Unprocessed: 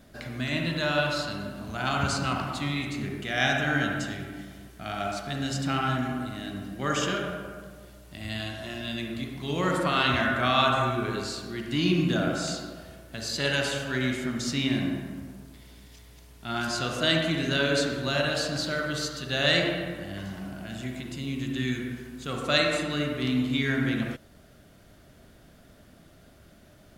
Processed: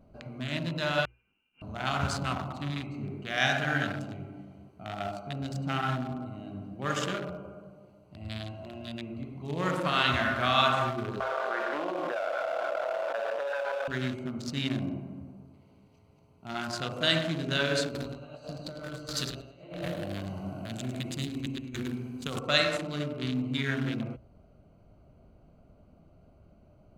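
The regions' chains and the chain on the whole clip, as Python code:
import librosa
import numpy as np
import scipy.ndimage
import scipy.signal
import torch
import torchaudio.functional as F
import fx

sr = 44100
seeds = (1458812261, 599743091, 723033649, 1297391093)

y = fx.chain(x, sr, fx.gate_flip(shuts_db=-26.0, range_db=-29),
    fx.freq_invert(carrier_hz=3000), at=(1.05, 1.62))
y = fx.chain(y, sr, fx.cheby1_bandpass(low_hz=540.0, high_hz=1500.0, order=3),
    fx.tilt_eq(slope=-1.5),
    fx.env_flatten(amount_pct=100), at=(11.2, 13.88))
y = fx.chain(y, sr, fx.high_shelf(hz=4200.0, db=10.5),
    fx.over_compress(threshold_db=-32.0, ratio=-0.5),
    fx.echo_feedback(ms=105, feedback_pct=36, wet_db=-5.0), at=(17.88, 22.39))
y = fx.wiener(y, sr, points=25)
y = fx.peak_eq(y, sr, hz=300.0, db=-5.5, octaves=1.6)
y = fx.hum_notches(y, sr, base_hz=60, count=2)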